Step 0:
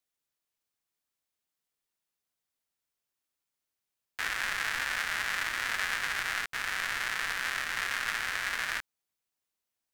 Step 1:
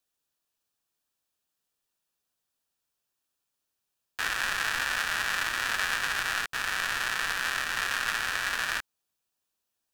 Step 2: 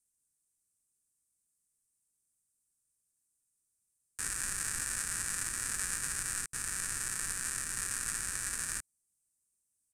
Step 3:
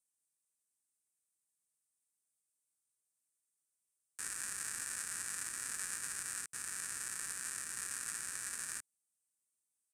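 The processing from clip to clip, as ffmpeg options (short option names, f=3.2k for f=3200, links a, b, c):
-af "bandreject=f=2.1k:w=5.8,volume=4dB"
-af "firequalizer=gain_entry='entry(120,0);entry(710,-20);entry(1200,-15);entry(2300,-14);entry(3200,-22);entry(4800,-9);entry(8600,11);entry(16000,-15)':delay=0.05:min_phase=1,volume=1dB"
-af "highpass=f=280:p=1,volume=-5.5dB"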